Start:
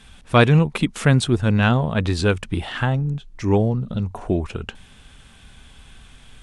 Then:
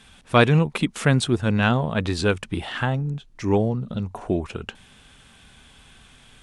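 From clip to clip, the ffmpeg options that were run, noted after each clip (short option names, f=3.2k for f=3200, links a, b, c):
-af "lowshelf=f=76:g=-11,volume=-1dB"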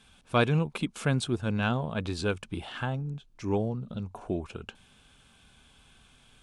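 -af "bandreject=f=1.9k:w=6.7,volume=-8dB"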